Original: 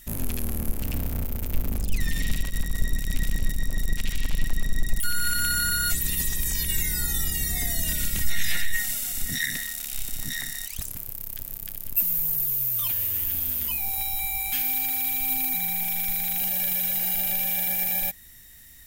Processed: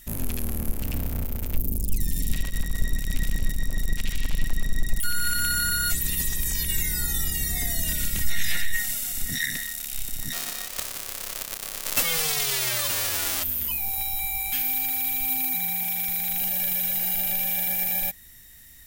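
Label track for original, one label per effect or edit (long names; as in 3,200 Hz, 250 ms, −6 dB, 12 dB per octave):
1.570000	2.320000	drawn EQ curve 370 Hz 0 dB, 1,400 Hz −18 dB, 11,000 Hz +6 dB
10.320000	13.420000	spectral envelope flattened exponent 0.1
15.250000	16.290000	high-pass filter 57 Hz 6 dB per octave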